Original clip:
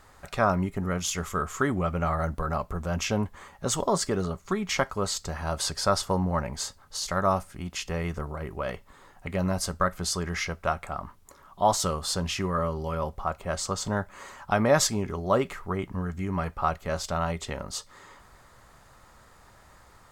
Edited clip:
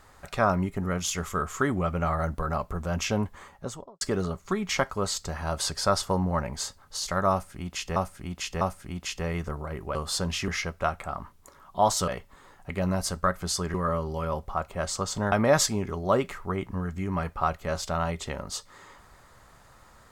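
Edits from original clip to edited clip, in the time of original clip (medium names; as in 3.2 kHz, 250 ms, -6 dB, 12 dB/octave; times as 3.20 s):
3.37–4.01 s: studio fade out
7.31–7.96 s: loop, 3 plays
8.65–10.31 s: swap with 11.91–12.44 s
14.02–14.53 s: delete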